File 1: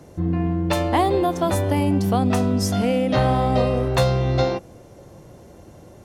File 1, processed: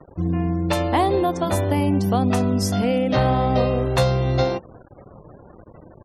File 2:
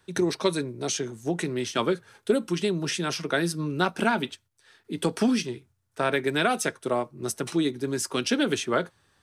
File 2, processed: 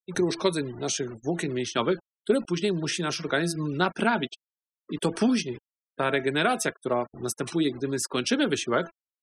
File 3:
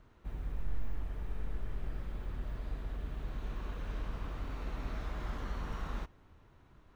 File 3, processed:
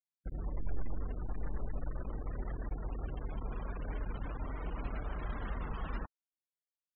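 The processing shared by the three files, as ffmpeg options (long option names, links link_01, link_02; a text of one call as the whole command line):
ffmpeg -i in.wav -af "bandreject=frequency=334.3:width_type=h:width=4,bandreject=frequency=668.6:width_type=h:width=4,bandreject=frequency=1002.9:width_type=h:width=4,bandreject=frequency=1337.2:width_type=h:width=4,bandreject=frequency=1671.5:width_type=h:width=4,acrusher=bits=6:mix=0:aa=0.000001,afftfilt=real='re*gte(hypot(re,im),0.01)':imag='im*gte(hypot(re,im),0.01)':win_size=1024:overlap=0.75" out.wav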